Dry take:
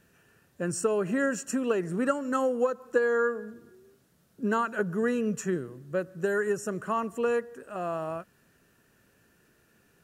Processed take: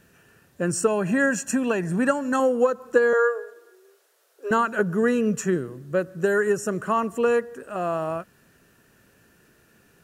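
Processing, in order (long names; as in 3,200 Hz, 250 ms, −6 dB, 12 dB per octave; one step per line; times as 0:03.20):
0:00.87–0:02.40: comb filter 1.2 ms, depth 48%
0:03.13–0:04.51: Butterworth high-pass 400 Hz 48 dB per octave
level +6 dB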